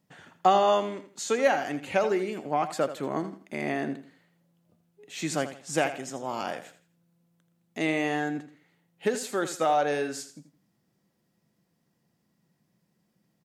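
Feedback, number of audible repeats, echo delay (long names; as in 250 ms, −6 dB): 30%, 3, 82 ms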